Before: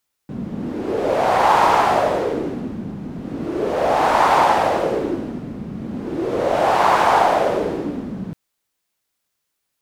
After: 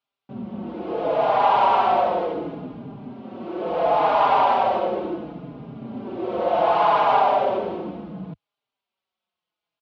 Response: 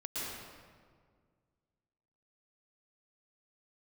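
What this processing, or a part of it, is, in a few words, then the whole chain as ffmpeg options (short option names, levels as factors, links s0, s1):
barber-pole flanger into a guitar amplifier: -filter_complex "[0:a]asettb=1/sr,asplit=3[s0][s1][s2];[s0]atrim=end=3.144[s3];[s1]atrim=start=3.14:end=3.66,asetpts=PTS-STARTPTS,afade=t=in:d=0.004:c=qsin,afade=t=out:st=0.516:d=0.004:c=qsin,highpass=f=200:p=1[s4];[s2]atrim=start=3.656[s5];[s3][s4]acrossfade=d=0.004:c1=hsin:c2=qsin[s6];[s6][s5]acrossfade=d=0.004:c1=qsin:c2=hsin,equalizer=f=960:w=1.5:g=3.5,asplit=2[s7][s8];[s8]adelay=4.5,afreqshift=-0.7[s9];[s7][s9]amix=inputs=2:normalize=1,asoftclip=type=tanh:threshold=0.447,highpass=80,equalizer=f=92:t=q:w=4:g=-10,equalizer=f=300:t=q:w=4:g=-3,equalizer=f=680:t=q:w=4:g=4,equalizer=f=1800:t=q:w=4:g=-8,equalizer=f=3000:t=q:w=4:g=3,lowpass=f=3900:w=0.5412,lowpass=f=3900:w=1.3066,volume=0.794"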